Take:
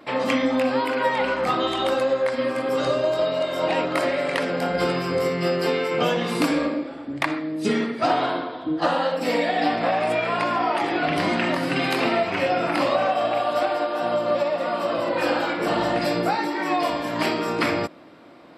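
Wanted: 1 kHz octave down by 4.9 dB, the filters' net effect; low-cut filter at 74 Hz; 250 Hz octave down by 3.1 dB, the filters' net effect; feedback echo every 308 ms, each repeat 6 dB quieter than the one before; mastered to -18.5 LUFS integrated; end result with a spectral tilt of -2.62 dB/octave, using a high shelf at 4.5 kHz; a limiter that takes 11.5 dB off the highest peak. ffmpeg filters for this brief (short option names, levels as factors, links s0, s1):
-af "highpass=74,equalizer=f=250:t=o:g=-3.5,equalizer=f=1000:t=o:g=-7,highshelf=f=4500:g=3.5,alimiter=limit=0.106:level=0:latency=1,aecho=1:1:308|616|924|1232|1540|1848:0.501|0.251|0.125|0.0626|0.0313|0.0157,volume=2.82"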